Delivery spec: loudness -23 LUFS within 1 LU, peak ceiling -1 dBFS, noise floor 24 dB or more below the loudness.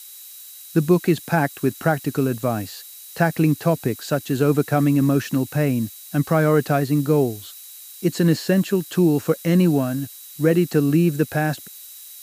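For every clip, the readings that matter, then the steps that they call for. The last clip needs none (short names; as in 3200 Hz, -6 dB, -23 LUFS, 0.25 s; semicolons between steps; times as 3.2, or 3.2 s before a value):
steady tone 3900 Hz; tone level -50 dBFS; noise floor -41 dBFS; noise floor target -45 dBFS; loudness -20.5 LUFS; peak -3.0 dBFS; loudness target -23.0 LUFS
-> notch 3900 Hz, Q 30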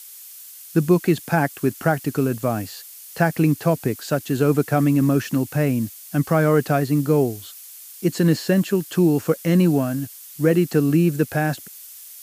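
steady tone none; noise floor -41 dBFS; noise floor target -45 dBFS
-> noise print and reduce 6 dB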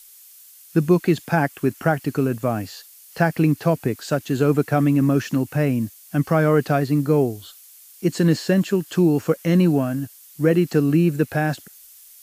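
noise floor -47 dBFS; loudness -20.5 LUFS; peak -3.0 dBFS; loudness target -23.0 LUFS
-> gain -2.5 dB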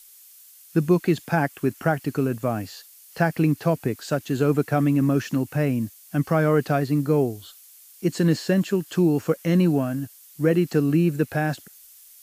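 loudness -23.0 LUFS; peak -5.5 dBFS; noise floor -50 dBFS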